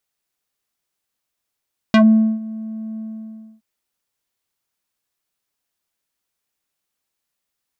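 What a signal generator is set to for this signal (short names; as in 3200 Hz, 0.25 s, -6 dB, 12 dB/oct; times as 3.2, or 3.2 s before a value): synth note square A3 12 dB/oct, low-pass 310 Hz, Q 1.5, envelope 4 oct, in 0.10 s, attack 1.4 ms, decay 0.45 s, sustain -21 dB, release 0.63 s, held 1.04 s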